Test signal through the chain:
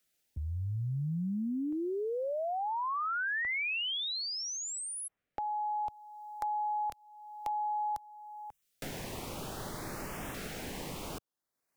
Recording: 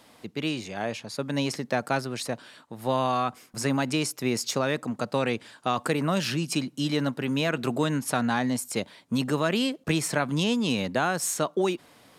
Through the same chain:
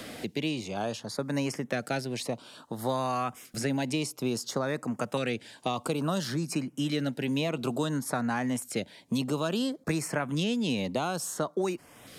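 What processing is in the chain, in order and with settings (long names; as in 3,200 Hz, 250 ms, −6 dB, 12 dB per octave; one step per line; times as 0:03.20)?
auto-filter notch saw up 0.58 Hz 880–4,700 Hz
multiband upward and downward compressor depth 70%
level −3.5 dB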